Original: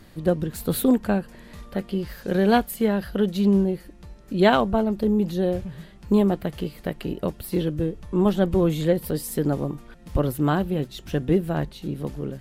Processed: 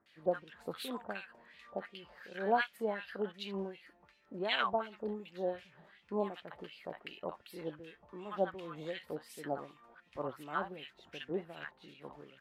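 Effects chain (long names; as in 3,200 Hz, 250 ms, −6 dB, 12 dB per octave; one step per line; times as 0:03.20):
multiband delay without the direct sound lows, highs 60 ms, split 990 Hz
auto-filter band-pass sine 2.7 Hz 760–2,900 Hz
level −1.5 dB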